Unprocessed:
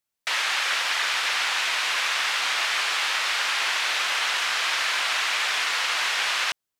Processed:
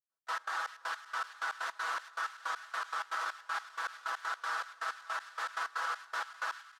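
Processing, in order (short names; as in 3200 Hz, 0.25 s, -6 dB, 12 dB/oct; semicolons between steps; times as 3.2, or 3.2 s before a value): HPF 360 Hz 12 dB/oct; resonant high shelf 1800 Hz -9 dB, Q 3; comb 6.1 ms, depth 97%; limiter -18.5 dBFS, peak gain reduction 7.5 dB; flange 0.45 Hz, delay 8.1 ms, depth 7 ms, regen -52%; step gate ".x.x.xx..x..x." 159 bpm -24 dB; thin delay 0.386 s, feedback 58%, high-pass 1700 Hz, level -11 dB; gain -4 dB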